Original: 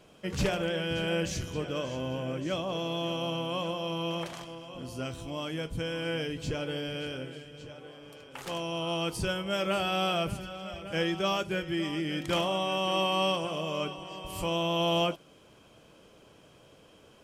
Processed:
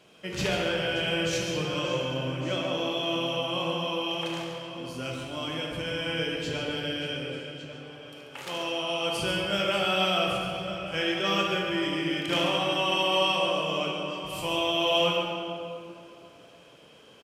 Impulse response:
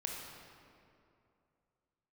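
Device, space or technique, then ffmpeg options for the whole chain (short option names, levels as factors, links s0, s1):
PA in a hall: -filter_complex "[0:a]asettb=1/sr,asplit=3[s0][s1][s2];[s0]atrim=end=1.324[s3];[s1]atrim=start=1.32:end=2.03,asetpts=PTS-STARTPTS,afade=t=in:d=0.004:c=qsin,afade=t=out:st=0.706:d=0.004:c=qsin,aecho=1:1:5.7:0.83,atrim=end_sample=31311[s4];[s2]atrim=start=2.026[s5];[s3][s4]acrossfade=d=0.004:c1=hsin:c2=qsin[s6];[s6][s5]acrossfade=d=0.004:c1=qsin:c2=hsin,highpass=f=160:p=1,equalizer=f=3000:t=o:w=1.7:g=5,aecho=1:1:138:0.335[s7];[1:a]atrim=start_sample=2205[s8];[s7][s8]afir=irnorm=-1:irlink=0,volume=1.12"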